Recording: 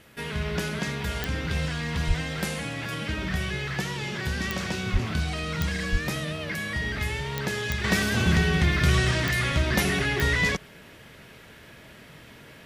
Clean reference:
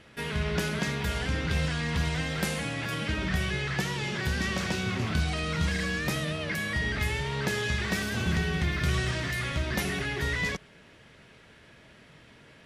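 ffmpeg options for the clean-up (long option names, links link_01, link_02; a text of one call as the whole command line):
ffmpeg -i in.wav -filter_complex "[0:a]adeclick=threshold=4,asplit=3[link_01][link_02][link_03];[link_01]afade=type=out:start_time=2.07:duration=0.02[link_04];[link_02]highpass=frequency=140:width=0.5412,highpass=frequency=140:width=1.3066,afade=type=in:start_time=2.07:duration=0.02,afade=type=out:start_time=2.19:duration=0.02[link_05];[link_03]afade=type=in:start_time=2.19:duration=0.02[link_06];[link_04][link_05][link_06]amix=inputs=3:normalize=0,asplit=3[link_07][link_08][link_09];[link_07]afade=type=out:start_time=4.92:duration=0.02[link_10];[link_08]highpass=frequency=140:width=0.5412,highpass=frequency=140:width=1.3066,afade=type=in:start_time=4.92:duration=0.02,afade=type=out:start_time=5.04:duration=0.02[link_11];[link_09]afade=type=in:start_time=5.04:duration=0.02[link_12];[link_10][link_11][link_12]amix=inputs=3:normalize=0,asplit=3[link_13][link_14][link_15];[link_13]afade=type=out:start_time=5.91:duration=0.02[link_16];[link_14]highpass=frequency=140:width=0.5412,highpass=frequency=140:width=1.3066,afade=type=in:start_time=5.91:duration=0.02,afade=type=out:start_time=6.03:duration=0.02[link_17];[link_15]afade=type=in:start_time=6.03:duration=0.02[link_18];[link_16][link_17][link_18]amix=inputs=3:normalize=0,agate=range=-21dB:threshold=-40dB,asetnsamples=nb_out_samples=441:pad=0,asendcmd='7.84 volume volume -6dB',volume=0dB" out.wav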